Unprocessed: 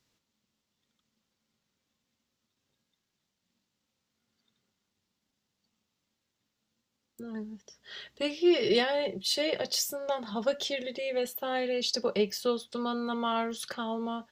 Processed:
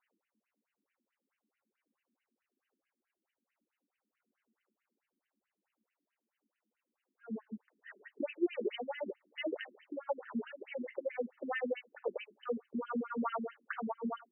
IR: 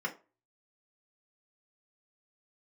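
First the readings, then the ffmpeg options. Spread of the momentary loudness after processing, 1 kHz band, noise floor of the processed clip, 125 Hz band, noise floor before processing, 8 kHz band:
10 LU, −7.5 dB, below −85 dBFS, can't be measured, −83 dBFS, below −40 dB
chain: -af "acompressor=threshold=-30dB:ratio=6,afftfilt=real='re*between(b*sr/1024,250*pow(2200/250,0.5+0.5*sin(2*PI*4.6*pts/sr))/1.41,250*pow(2200/250,0.5+0.5*sin(2*PI*4.6*pts/sr))*1.41)':imag='im*between(b*sr/1024,250*pow(2200/250,0.5+0.5*sin(2*PI*4.6*pts/sr))/1.41,250*pow(2200/250,0.5+0.5*sin(2*PI*4.6*pts/sr))*1.41)':win_size=1024:overlap=0.75,volume=3.5dB"

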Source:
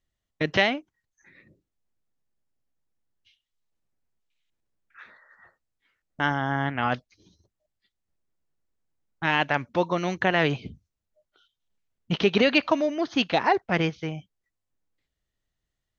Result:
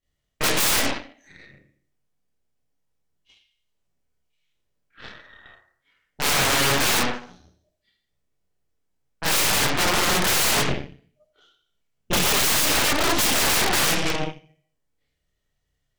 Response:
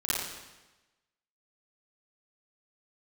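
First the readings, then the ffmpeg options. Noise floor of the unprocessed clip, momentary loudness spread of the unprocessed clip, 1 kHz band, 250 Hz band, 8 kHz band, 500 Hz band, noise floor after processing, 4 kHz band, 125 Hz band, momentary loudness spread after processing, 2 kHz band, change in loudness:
−84 dBFS, 12 LU, +2.0 dB, −2.0 dB, can't be measured, −1.5 dB, −76 dBFS, +10.0 dB, +0.5 dB, 9 LU, +3.5 dB, +5.0 dB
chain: -filter_complex "[1:a]atrim=start_sample=2205,asetrate=79380,aresample=44100[link_01];[0:a][link_01]afir=irnorm=-1:irlink=0,aeval=exprs='(mod(9.44*val(0)+1,2)-1)/9.44':channel_layout=same,aeval=exprs='0.112*(cos(1*acos(clip(val(0)/0.112,-1,1)))-cos(1*PI/2))+0.0447*(cos(2*acos(clip(val(0)/0.112,-1,1)))-cos(2*PI/2))+0.0562*(cos(8*acos(clip(val(0)/0.112,-1,1)))-cos(8*PI/2))':channel_layout=same,volume=2dB"

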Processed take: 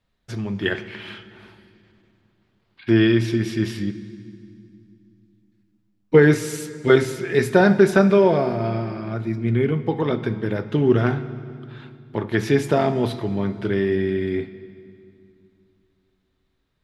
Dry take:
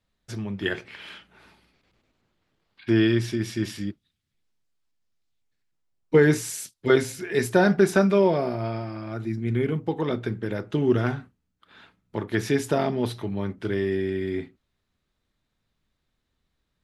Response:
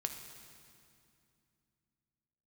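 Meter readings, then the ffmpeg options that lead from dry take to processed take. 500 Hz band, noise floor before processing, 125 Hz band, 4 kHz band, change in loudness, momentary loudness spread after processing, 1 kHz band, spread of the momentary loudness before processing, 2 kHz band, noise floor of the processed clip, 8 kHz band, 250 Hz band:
+4.5 dB, −78 dBFS, +5.0 dB, +3.0 dB, +4.5 dB, 18 LU, +4.0 dB, 15 LU, +4.0 dB, −69 dBFS, −1.5 dB, +4.5 dB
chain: -filter_complex "[0:a]asplit=2[link_01][link_02];[1:a]atrim=start_sample=2205,lowpass=5300[link_03];[link_02][link_03]afir=irnorm=-1:irlink=0,volume=-1dB[link_04];[link_01][link_04]amix=inputs=2:normalize=0,volume=-1dB"

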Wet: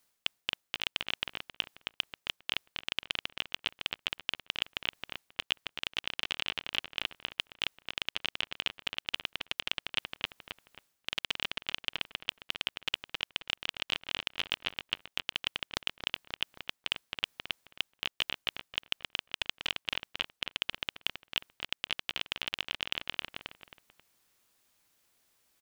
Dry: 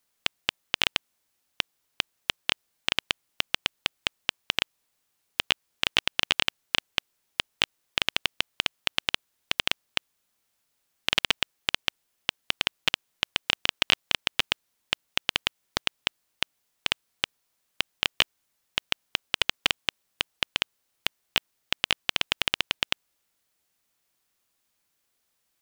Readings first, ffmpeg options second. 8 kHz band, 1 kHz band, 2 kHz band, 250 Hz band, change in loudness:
−10.5 dB, −8.0 dB, −7.0 dB, −7.5 dB, −6.5 dB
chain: -filter_complex "[0:a]asplit=2[link_01][link_02];[link_02]adelay=268,lowpass=frequency=3500:poles=1,volume=-5.5dB,asplit=2[link_03][link_04];[link_04]adelay=268,lowpass=frequency=3500:poles=1,volume=0.34,asplit=2[link_05][link_06];[link_06]adelay=268,lowpass=frequency=3500:poles=1,volume=0.34,asplit=2[link_07][link_08];[link_08]adelay=268,lowpass=frequency=3500:poles=1,volume=0.34[link_09];[link_01][link_03][link_05][link_07][link_09]amix=inputs=5:normalize=0,areverse,acompressor=threshold=-32dB:ratio=10,areverse,volume=3.5dB"

